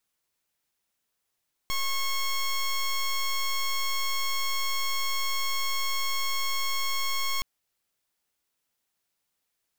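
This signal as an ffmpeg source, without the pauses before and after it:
-f lavfi -i "aevalsrc='0.0447*(2*lt(mod(1090*t,1),0.11)-1)':d=5.72:s=44100"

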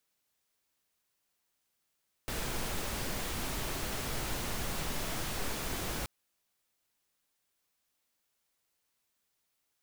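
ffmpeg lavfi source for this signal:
-f lavfi -i "anoisesrc=c=pink:a=0.0861:d=3.78:r=44100:seed=1"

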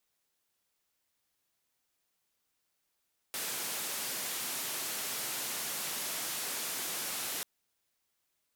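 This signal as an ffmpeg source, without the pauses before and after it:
-f lavfi -i "anoisesrc=c=white:d=4.09:r=44100:seed=1,highpass=f=160,lowpass=f=15000,volume=-30.4dB"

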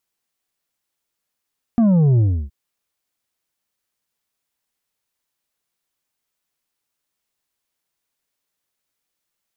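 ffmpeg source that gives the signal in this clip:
-f lavfi -i "aevalsrc='0.251*clip((0.72-t)/0.31,0,1)*tanh(2*sin(2*PI*240*0.72/log(65/240)*(exp(log(65/240)*t/0.72)-1)))/tanh(2)':d=0.72:s=44100"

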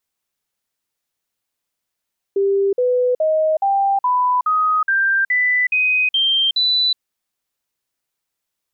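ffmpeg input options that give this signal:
-f lavfi -i "aevalsrc='0.211*clip(min(mod(t,0.42),0.37-mod(t,0.42))/0.005,0,1)*sin(2*PI*395*pow(2,floor(t/0.42)/3)*mod(t,0.42))':d=4.62:s=44100"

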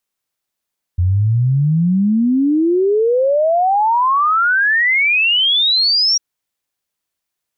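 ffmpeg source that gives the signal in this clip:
-f lavfi -i "aevalsrc='0.282*clip(min(t,5.2-t)/0.01,0,1)*sin(2*PI*86*5.2/log(5700/86)*(exp(log(5700/86)*t/5.2)-1))':d=5.2:s=44100"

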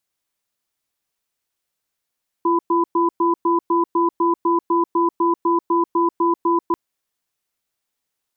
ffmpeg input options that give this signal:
-f lavfi -i "aevalsrc='0.141*(sin(2*PI*341*t)+sin(2*PI*1000*t))*clip(min(mod(t,0.25),0.14-mod(t,0.25))/0.005,0,1)':d=4.29:s=44100"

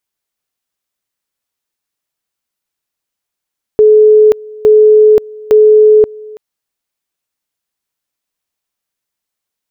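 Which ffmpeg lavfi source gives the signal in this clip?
-f lavfi -i "aevalsrc='pow(10,(-2-24*gte(mod(t,0.86),0.53))/20)*sin(2*PI*428*t)':d=2.58:s=44100"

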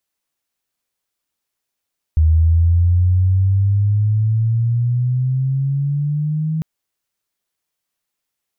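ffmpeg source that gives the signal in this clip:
-f lavfi -i "aevalsrc='pow(10,(-9-8*t/4.45)/20)*sin(2*PI*78*4.45/log(160/78)*(exp(log(160/78)*t/4.45)-1))':d=4.45:s=44100"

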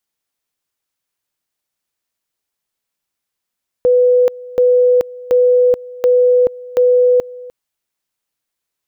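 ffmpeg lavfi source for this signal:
-f lavfi -i "aevalsrc='pow(10,(-7.5-21*gte(mod(t,0.73),0.43))/20)*sin(2*PI*496*t)':d=3.65:s=44100"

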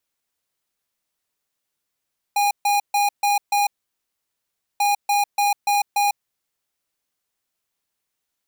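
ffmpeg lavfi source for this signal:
-f lavfi -i "aevalsrc='0.119*(2*lt(mod(817*t,1),0.5)-1)*clip(min(mod(mod(t,2.44),0.29),0.15-mod(mod(t,2.44),0.29))/0.005,0,1)*lt(mod(t,2.44),1.45)':d=4.88:s=44100"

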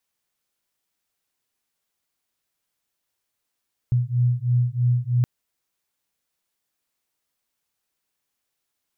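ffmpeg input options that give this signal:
-f lavfi -i "aevalsrc='0.0891*(sin(2*PI*121*t)+sin(2*PI*124.1*t))':d=1.32:s=44100"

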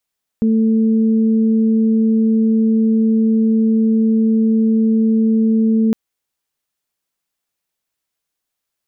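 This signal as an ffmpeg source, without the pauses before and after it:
-f lavfi -i "aevalsrc='0.282*sin(2*PI*222*t)+0.0631*sin(2*PI*444*t)':d=5.51:s=44100"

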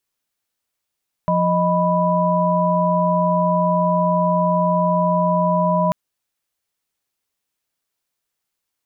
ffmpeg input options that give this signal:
-f lavfi -i "aevalsrc='0.112*(sin(2*PI*174.61*t)+sin(2*PI*622.25*t)+sin(2*PI*987.77*t))':d=4.64:s=44100"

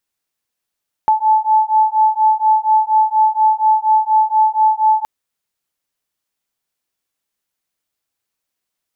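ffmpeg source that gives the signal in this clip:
-f lavfi -i "aevalsrc='0.211*(sin(2*PI*867*t)+sin(2*PI*871.2*t))':d=3.97:s=44100"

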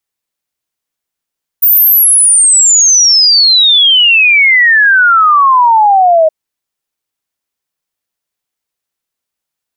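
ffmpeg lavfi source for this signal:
-f lavfi -i "aevalsrc='0.668*clip(min(t,4.67-t)/0.01,0,1)*sin(2*PI*15000*4.67/log(620/15000)*(exp(log(620/15000)*t/4.67)-1))':d=4.67:s=44100"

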